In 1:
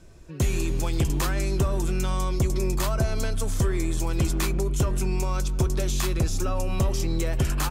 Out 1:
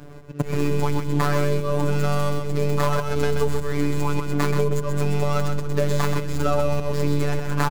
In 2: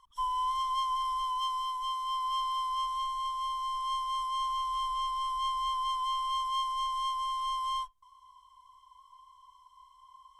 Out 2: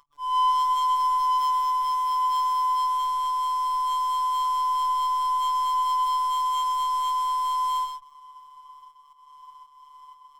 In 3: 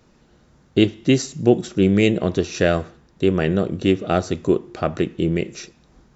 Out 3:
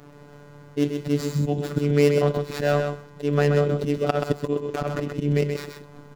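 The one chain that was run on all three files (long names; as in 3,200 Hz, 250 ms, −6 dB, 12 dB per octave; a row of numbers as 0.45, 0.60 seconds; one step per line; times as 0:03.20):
running median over 15 samples
low-shelf EQ 73 Hz −10.5 dB
volume swells 208 ms
downward compressor 2 to 1, threshold −34 dBFS
phases set to zero 145 Hz
on a send: single-tap delay 129 ms −6 dB
on the sum: loudness normalisation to −24 LKFS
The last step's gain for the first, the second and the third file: +16.0, +10.5, +13.5 decibels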